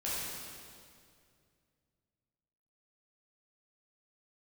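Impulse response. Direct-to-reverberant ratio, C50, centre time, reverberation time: -9.0 dB, -3.5 dB, 147 ms, 2.3 s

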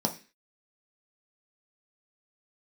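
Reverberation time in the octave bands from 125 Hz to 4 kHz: 0.30 s, 0.40 s, 0.35 s, 0.30 s, 0.50 s, 0.40 s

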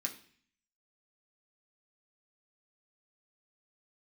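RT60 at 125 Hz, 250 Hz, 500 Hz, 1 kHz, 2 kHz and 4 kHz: 0.75 s, 0.70 s, 0.50 s, 0.50 s, 0.65 s, 0.60 s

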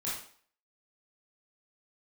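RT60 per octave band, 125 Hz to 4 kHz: 0.40 s, 0.50 s, 0.50 s, 0.50 s, 0.50 s, 0.45 s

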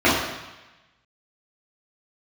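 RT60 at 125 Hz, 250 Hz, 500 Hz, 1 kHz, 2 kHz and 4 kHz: 1.2 s, 0.95 s, 1.0 s, 1.1 s, 1.2 s, 1.1 s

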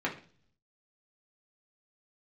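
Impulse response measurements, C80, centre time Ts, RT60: 16.0 dB, 17 ms, 0.45 s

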